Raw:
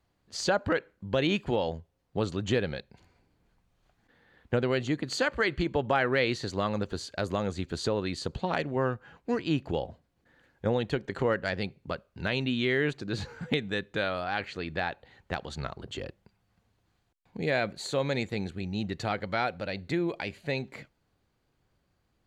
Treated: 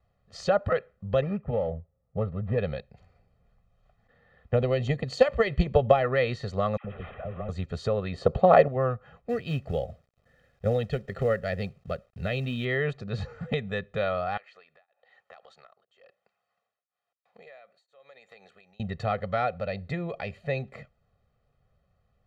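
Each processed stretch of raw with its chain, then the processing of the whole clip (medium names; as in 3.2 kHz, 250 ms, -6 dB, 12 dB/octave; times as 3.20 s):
1.21–2.58 s: median filter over 15 samples + distance through air 440 m + comb of notches 360 Hz
4.55–6.04 s: peaking EQ 1.4 kHz -8.5 dB 0.7 oct + transient shaper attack +9 dB, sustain +4 dB
6.77–7.49 s: one-bit delta coder 16 kbps, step -37.5 dBFS + compression 2.5:1, threshold -36 dBFS + phase dispersion lows, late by 76 ms, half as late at 890 Hz
8.14–8.68 s: peaking EQ 570 Hz +12.5 dB 3 oct + tape noise reduction on one side only decoder only
9.29–12.65 s: peaking EQ 1 kHz -13 dB 0.45 oct + companded quantiser 6-bit
14.37–18.80 s: high-pass 670 Hz + compression 5:1, threshold -48 dBFS + tremolo of two beating tones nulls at 1 Hz
whole clip: low-pass 1.5 kHz 6 dB/octave; comb 1.6 ms, depth 96%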